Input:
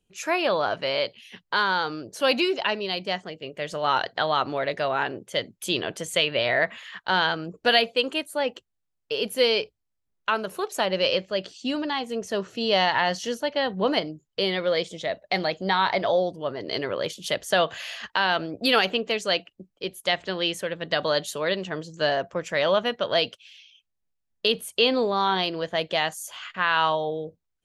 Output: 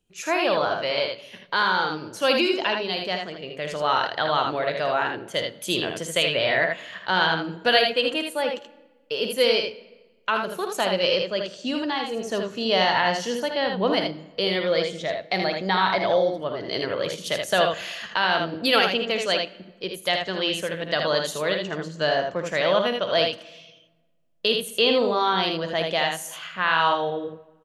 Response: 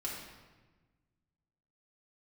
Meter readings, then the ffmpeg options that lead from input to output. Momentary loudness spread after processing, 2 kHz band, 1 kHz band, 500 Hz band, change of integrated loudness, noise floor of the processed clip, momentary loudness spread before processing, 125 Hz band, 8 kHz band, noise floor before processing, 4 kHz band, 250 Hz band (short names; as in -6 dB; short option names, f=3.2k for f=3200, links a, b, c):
9 LU, +1.5 dB, +1.5 dB, +1.5 dB, +1.5 dB, -56 dBFS, 9 LU, +2.0 dB, +1.5 dB, -79 dBFS, +1.5 dB, +1.5 dB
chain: -filter_complex "[0:a]aecho=1:1:54|79:0.299|0.562,asplit=2[a][b];[1:a]atrim=start_sample=2205,adelay=6[c];[b][c]afir=irnorm=-1:irlink=0,volume=-17dB[d];[a][d]amix=inputs=2:normalize=0"